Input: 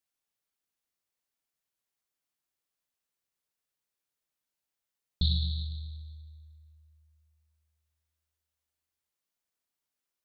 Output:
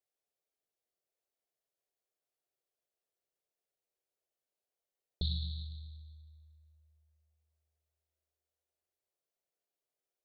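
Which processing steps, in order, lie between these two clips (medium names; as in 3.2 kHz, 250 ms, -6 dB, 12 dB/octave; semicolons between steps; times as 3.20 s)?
high-order bell 510 Hz +12 dB 1.3 oct; trim -7.5 dB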